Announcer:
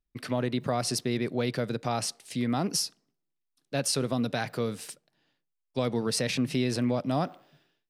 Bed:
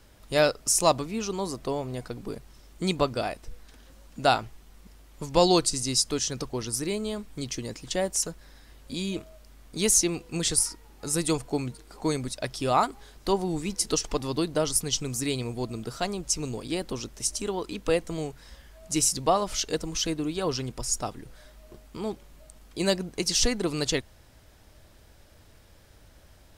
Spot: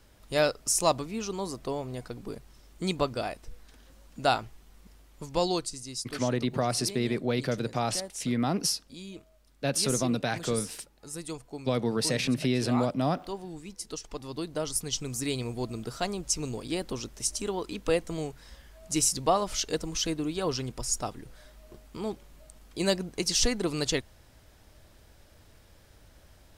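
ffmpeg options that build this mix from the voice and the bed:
ffmpeg -i stem1.wav -i stem2.wav -filter_complex "[0:a]adelay=5900,volume=0.5dB[link_01];[1:a]volume=7.5dB,afade=type=out:start_time=4.95:duration=0.87:silence=0.354813,afade=type=in:start_time=14.01:duration=1.46:silence=0.298538[link_02];[link_01][link_02]amix=inputs=2:normalize=0" out.wav

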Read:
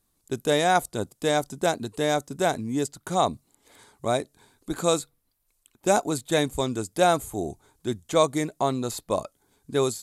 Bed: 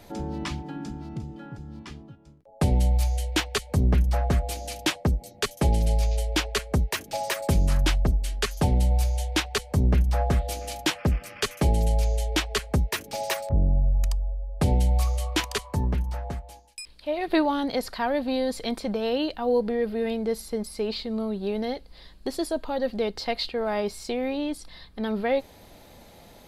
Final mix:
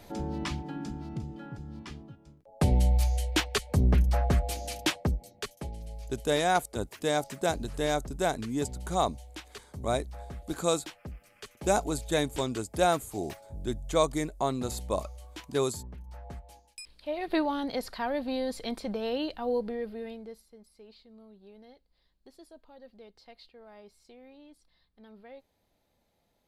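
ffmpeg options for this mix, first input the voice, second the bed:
ffmpeg -i stem1.wav -i stem2.wav -filter_complex "[0:a]adelay=5800,volume=-4.5dB[link_01];[1:a]volume=11.5dB,afade=type=out:start_time=4.78:duration=0.93:silence=0.141254,afade=type=in:start_time=16:duration=0.66:silence=0.211349,afade=type=out:start_time=19.42:duration=1.04:silence=0.112202[link_02];[link_01][link_02]amix=inputs=2:normalize=0" out.wav

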